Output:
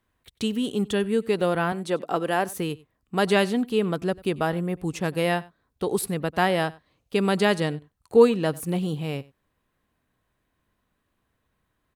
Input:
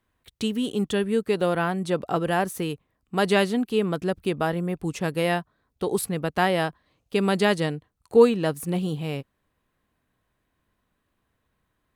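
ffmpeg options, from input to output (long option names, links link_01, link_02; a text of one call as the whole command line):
ffmpeg -i in.wav -filter_complex "[0:a]asettb=1/sr,asplit=3[link_01][link_02][link_03];[link_01]atrim=end=1.724[link_04];[link_02]atrim=start=1.72:end=2.49,asetpts=PTS-STARTPTS,afade=type=in:duration=0.004:curve=qsin,afade=type=out:start_time=0.766:duration=0.004:curve=qsin,highpass=230[link_05];[link_03]atrim=start=2.486[link_06];[link_04][link_05]acrossfade=duration=0.004:curve1=hsin:curve2=qsin[link_07];[link_07][link_06]acrossfade=duration=0.004:curve1=qsin:curve2=hsin,asplit=2[link_08][link_09];[link_09]aecho=0:1:94:0.075[link_10];[link_08][link_10]amix=inputs=2:normalize=0" out.wav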